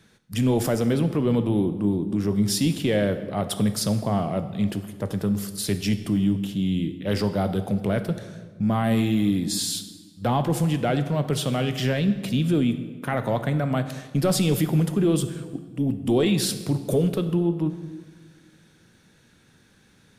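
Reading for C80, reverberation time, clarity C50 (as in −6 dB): 13.0 dB, 1.5 s, 11.5 dB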